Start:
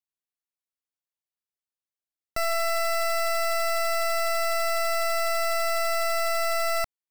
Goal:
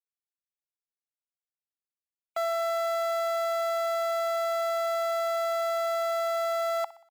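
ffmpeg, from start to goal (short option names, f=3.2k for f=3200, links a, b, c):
-filter_complex "[0:a]afftfilt=real='re*gte(hypot(re,im),0.00447)':imag='im*gte(hypot(re,im),0.00447)':win_size=1024:overlap=0.75,acrossover=split=3100[a][b];[a]acontrast=63[c];[b]aeval=exprs='0.0708*(cos(1*acos(clip(val(0)/0.0708,-1,1)))-cos(1*PI/2))+0.0316*(cos(3*acos(clip(val(0)/0.0708,-1,1)))-cos(3*PI/2))':c=same[d];[c][d]amix=inputs=2:normalize=0,aeval=exprs='clip(val(0),-1,0.02)':c=same,highpass=f=810:t=q:w=6.8,asplit=2[e][f];[f]aecho=0:1:61|122|183|244:0.133|0.0667|0.0333|0.0167[g];[e][g]amix=inputs=2:normalize=0,volume=-8dB"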